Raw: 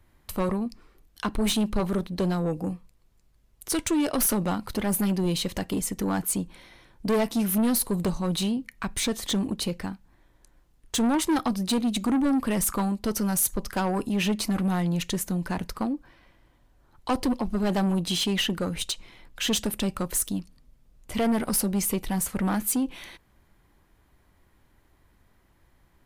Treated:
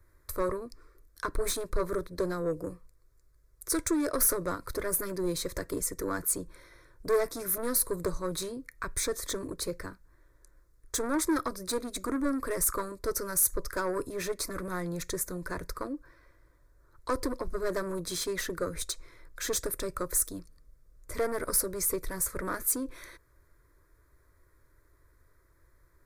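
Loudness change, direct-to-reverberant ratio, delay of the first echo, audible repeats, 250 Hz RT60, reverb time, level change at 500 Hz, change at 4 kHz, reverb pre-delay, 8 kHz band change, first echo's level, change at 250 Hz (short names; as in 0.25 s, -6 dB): -5.0 dB, none, none, none, none, none, -1.0 dB, -9.5 dB, none, -1.0 dB, none, -10.5 dB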